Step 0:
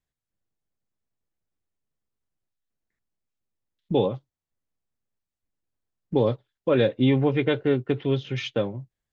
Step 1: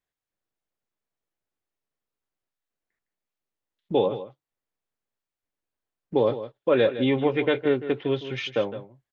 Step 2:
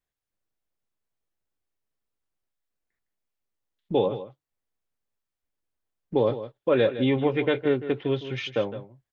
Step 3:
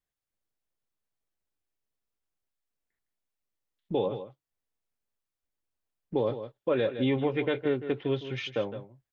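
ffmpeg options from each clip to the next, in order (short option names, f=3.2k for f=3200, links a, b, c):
-af "bass=f=250:g=-11,treble=f=4k:g=-6,aecho=1:1:160:0.237,volume=2dB"
-af "lowshelf=f=110:g=8.5,volume=-1.5dB"
-af "alimiter=limit=-14.5dB:level=0:latency=1:release=165,volume=-3dB"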